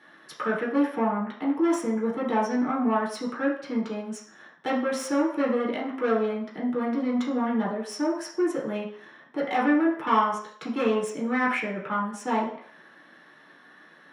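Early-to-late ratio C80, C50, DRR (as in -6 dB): 9.5 dB, 5.0 dB, -5.5 dB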